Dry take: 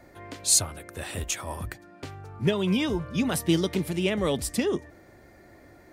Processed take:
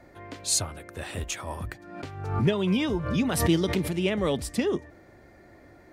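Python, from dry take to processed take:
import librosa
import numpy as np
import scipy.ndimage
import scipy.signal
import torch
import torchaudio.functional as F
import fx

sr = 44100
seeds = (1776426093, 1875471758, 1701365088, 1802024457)

y = fx.high_shelf(x, sr, hz=6500.0, db=-8.5)
y = fx.pre_swell(y, sr, db_per_s=61.0, at=(1.64, 3.93))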